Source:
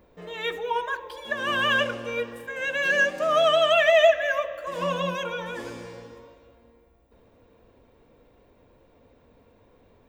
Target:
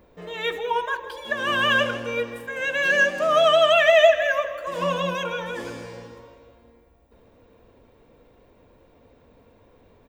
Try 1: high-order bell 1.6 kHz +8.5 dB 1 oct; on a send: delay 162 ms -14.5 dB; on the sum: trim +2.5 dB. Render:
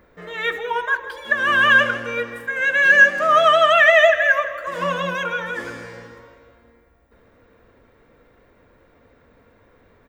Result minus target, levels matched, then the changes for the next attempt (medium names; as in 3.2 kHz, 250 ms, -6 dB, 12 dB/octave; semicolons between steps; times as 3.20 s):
2 kHz band +3.5 dB
remove: high-order bell 1.6 kHz +8.5 dB 1 oct